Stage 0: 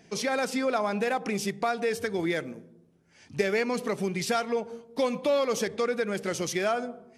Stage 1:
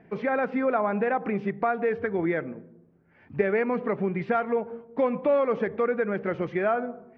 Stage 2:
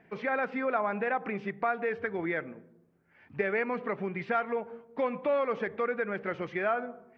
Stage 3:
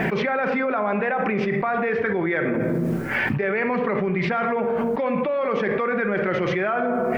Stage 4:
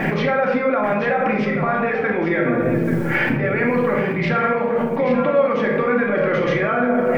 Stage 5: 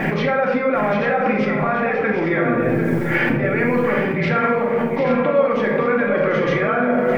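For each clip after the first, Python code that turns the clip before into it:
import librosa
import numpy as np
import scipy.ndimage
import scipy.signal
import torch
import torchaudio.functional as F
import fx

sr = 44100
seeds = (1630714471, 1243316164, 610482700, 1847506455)

y1 = scipy.signal.sosfilt(scipy.signal.butter(4, 2000.0, 'lowpass', fs=sr, output='sos'), x)
y1 = y1 * librosa.db_to_amplitude(2.5)
y2 = fx.tilt_shelf(y1, sr, db=-5.0, hz=880.0)
y2 = y2 * librosa.db_to_amplitude(-3.5)
y3 = fx.room_shoebox(y2, sr, seeds[0], volume_m3=1900.0, walls='furnished', distance_m=1.1)
y3 = fx.env_flatten(y3, sr, amount_pct=100)
y4 = y3 + 10.0 ** (-9.0 / 20.0) * np.pad(y3, (int(834 * sr / 1000.0), 0))[:len(y3)]
y4 = fx.room_shoebox(y4, sr, seeds[1], volume_m3=780.0, walls='furnished', distance_m=2.3)
y5 = y4 + 10.0 ** (-8.5 / 20.0) * np.pad(y4, (int(746 * sr / 1000.0), 0))[:len(y4)]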